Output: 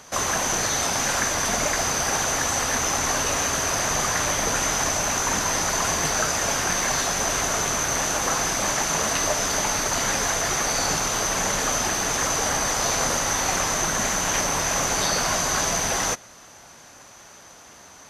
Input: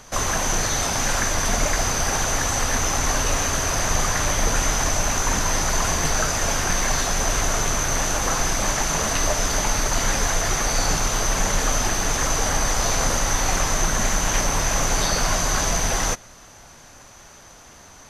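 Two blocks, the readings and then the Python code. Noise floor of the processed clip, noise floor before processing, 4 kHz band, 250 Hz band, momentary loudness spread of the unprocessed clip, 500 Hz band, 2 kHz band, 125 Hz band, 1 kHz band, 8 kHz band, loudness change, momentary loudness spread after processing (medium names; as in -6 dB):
-47 dBFS, -46 dBFS, 0.0 dB, -2.0 dB, 1 LU, -0.5 dB, 0.0 dB, -6.5 dB, 0.0 dB, 0.0 dB, -0.5 dB, 1 LU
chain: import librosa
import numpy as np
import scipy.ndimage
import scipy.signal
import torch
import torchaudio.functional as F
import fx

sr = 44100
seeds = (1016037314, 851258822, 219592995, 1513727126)

y = fx.highpass(x, sr, hz=180.0, slope=6)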